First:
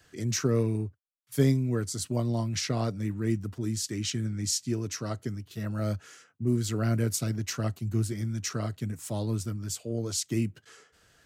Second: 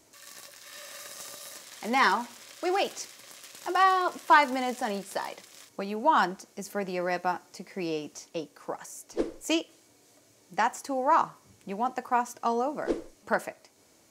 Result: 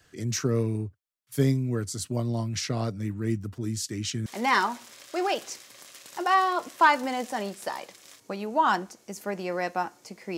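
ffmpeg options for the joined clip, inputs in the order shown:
-filter_complex "[0:a]apad=whole_dur=10.37,atrim=end=10.37,atrim=end=4.262[s0];[1:a]atrim=start=1.748:end=7.86[s1];[s0][s1]acrossfade=d=0.004:c1=hsin:c2=hsin"

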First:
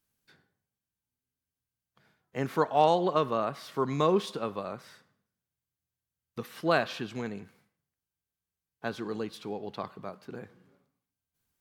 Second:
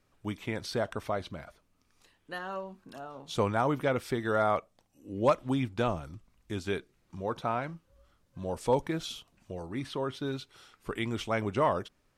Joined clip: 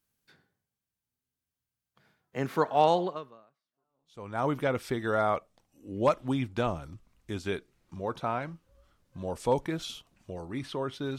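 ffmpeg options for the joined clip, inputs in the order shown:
-filter_complex "[0:a]apad=whole_dur=11.18,atrim=end=11.18,atrim=end=4.44,asetpts=PTS-STARTPTS[s0];[1:a]atrim=start=2.21:end=10.39,asetpts=PTS-STARTPTS[s1];[s0][s1]acrossfade=d=1.44:c1=exp:c2=exp"

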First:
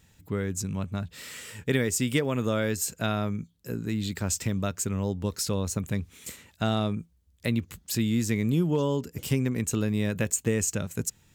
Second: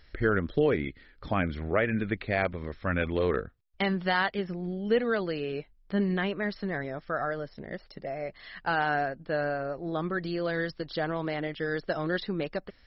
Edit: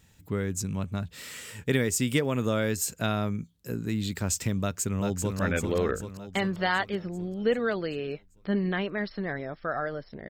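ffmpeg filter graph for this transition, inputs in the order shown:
-filter_complex "[0:a]apad=whole_dur=10.29,atrim=end=10.29,atrim=end=5.392[s0];[1:a]atrim=start=2.838:end=7.74[s1];[s0][s1]acrossfade=d=0.004:c1=hsin:c2=hsin,asplit=2[s2][s3];[s3]afade=t=in:st=4.61:d=0.01,afade=t=out:st=5.39:d=0.01,aecho=0:1:390|780|1170|1560|1950|2340|2730|3120|3510:0.595662|0.357397|0.214438|0.128663|0.0771978|0.0463187|0.0277912|0.0166747|0.0100048[s4];[s2][s4]amix=inputs=2:normalize=0"

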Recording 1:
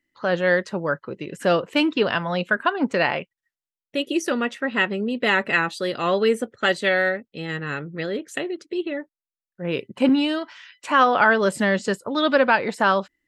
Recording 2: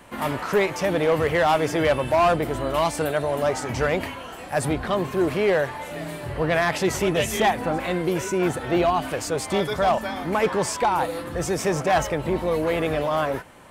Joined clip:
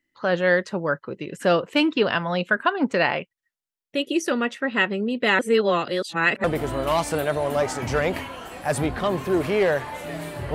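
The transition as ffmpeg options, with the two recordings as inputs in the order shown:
-filter_complex "[0:a]apad=whole_dur=10.54,atrim=end=10.54,asplit=2[s0][s1];[s0]atrim=end=5.392[s2];[s1]atrim=start=5.388:end=6.442,asetpts=PTS-STARTPTS,areverse[s3];[1:a]atrim=start=2.308:end=6.41[s4];[s2][s3]acrossfade=d=0.004:c1=hsin:c2=hsin[s5];[s5][s4]acrossfade=d=0.004:c1=hsin:c2=hsin"

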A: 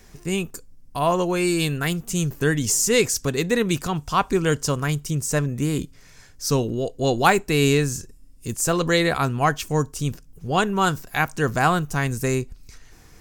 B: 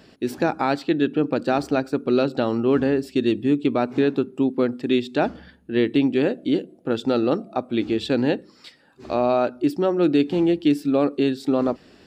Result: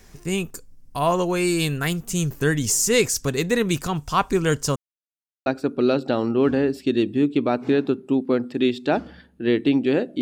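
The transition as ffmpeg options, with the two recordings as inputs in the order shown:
-filter_complex "[0:a]apad=whole_dur=10.21,atrim=end=10.21,asplit=2[s0][s1];[s0]atrim=end=4.76,asetpts=PTS-STARTPTS,afade=t=out:st=4.756:d=0.004:c=hsin[s2];[s1]atrim=start=4.76:end=5.46,asetpts=PTS-STARTPTS,volume=0[s3];[1:a]atrim=start=1.75:end=6.5,asetpts=PTS-STARTPTS,afade=t=in:d=0.004:c=hsin[s4];[s2][s3][s4]concat=n=3:v=0:a=1"

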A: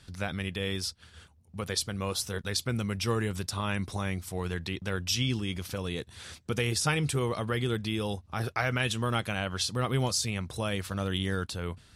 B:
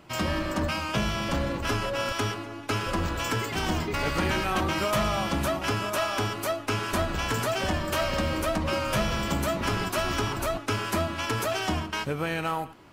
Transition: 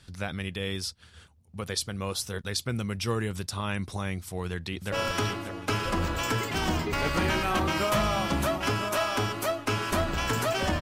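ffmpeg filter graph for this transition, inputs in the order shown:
-filter_complex "[0:a]apad=whole_dur=10.81,atrim=end=10.81,atrim=end=4.922[s0];[1:a]atrim=start=1.928:end=7.82[s1];[s0][s1]acrossfade=d=0.004:c1=hsin:c2=hsin,asplit=2[s2][s3];[s3]afade=t=in:st=4.13:d=0.01,afade=t=out:st=4.92:d=0.01,aecho=0:1:590|1180|1770|2360|2950|3540|4130|4720:0.446684|0.26801|0.160806|0.0964837|0.0578902|0.0347341|0.0208405|0.0125043[s4];[s2][s4]amix=inputs=2:normalize=0"

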